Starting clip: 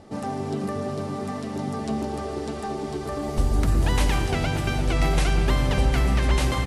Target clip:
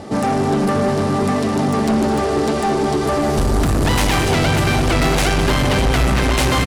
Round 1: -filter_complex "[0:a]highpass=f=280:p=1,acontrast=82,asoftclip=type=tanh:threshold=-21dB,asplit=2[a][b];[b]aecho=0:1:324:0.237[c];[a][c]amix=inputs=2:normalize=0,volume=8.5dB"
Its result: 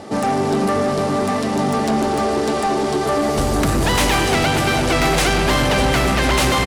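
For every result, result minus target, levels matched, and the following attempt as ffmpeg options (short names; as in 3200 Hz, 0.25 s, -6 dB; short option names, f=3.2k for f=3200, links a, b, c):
echo 0.111 s late; 125 Hz band -3.5 dB
-filter_complex "[0:a]highpass=f=280:p=1,acontrast=82,asoftclip=type=tanh:threshold=-21dB,asplit=2[a][b];[b]aecho=0:1:213:0.237[c];[a][c]amix=inputs=2:normalize=0,volume=8.5dB"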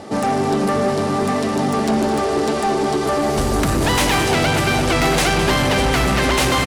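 125 Hz band -3.0 dB
-filter_complex "[0:a]highpass=f=87:p=1,acontrast=82,asoftclip=type=tanh:threshold=-21dB,asplit=2[a][b];[b]aecho=0:1:213:0.237[c];[a][c]amix=inputs=2:normalize=0,volume=8.5dB"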